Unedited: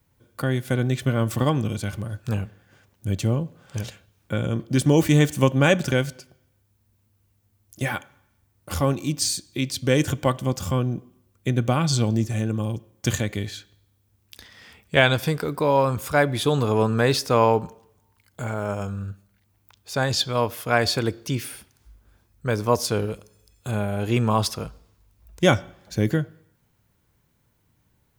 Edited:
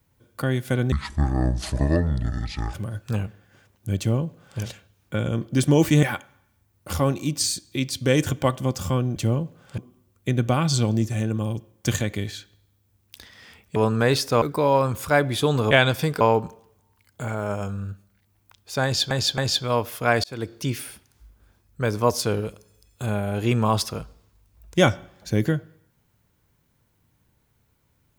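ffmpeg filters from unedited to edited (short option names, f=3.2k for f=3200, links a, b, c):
-filter_complex "[0:a]asplit=13[a][b][c][d][e][f][g][h][i][j][k][l][m];[a]atrim=end=0.924[n];[b]atrim=start=0.92:end=1.92,asetpts=PTS-STARTPTS,asetrate=24255,aresample=44100[o];[c]atrim=start=1.916:end=5.212[p];[d]atrim=start=7.838:end=10.972[q];[e]atrim=start=3.158:end=3.782[r];[f]atrim=start=10.968:end=14.952[s];[g]atrim=start=16.738:end=17.402[t];[h]atrim=start=15.448:end=16.742[u];[i]atrim=start=14.948:end=15.452[v];[j]atrim=start=17.398:end=20.302[w];[k]atrim=start=20.028:end=20.302[x];[l]atrim=start=20.028:end=20.89,asetpts=PTS-STARTPTS,afade=t=out:st=0.858:d=0.004:c=hsin[y];[m]atrim=start=20.89,asetpts=PTS-STARTPTS,afade=t=in:d=0.5:c=qsin[z];[n][o]acrossfade=d=0.004:c1=hsin:c2=hsin[aa];[aa][p]acrossfade=d=0.004:c1=hsin:c2=hsin[ab];[ab][q]acrossfade=d=0.004:c1=hsin:c2=hsin[ac];[ac][r]acrossfade=d=0.004:c1=hsin:c2=hsin[ad];[ad][s]acrossfade=d=0.004:c1=hsin:c2=hsin[ae];[ae][t]acrossfade=d=0.004:c1=hsin:c2=hsin[af];[af][u]acrossfade=d=0.004:c1=hsin:c2=hsin[ag];[ag][v]acrossfade=d=0.004:c1=hsin:c2=hsin[ah];[ah][w]acrossfade=d=0.004:c1=hsin:c2=hsin[ai];[ai][x]acrossfade=d=0.004:c1=hsin:c2=hsin[aj];[y][z]concat=n=2:v=0:a=1[ak];[aj][ak]acrossfade=d=0.004:c1=hsin:c2=hsin"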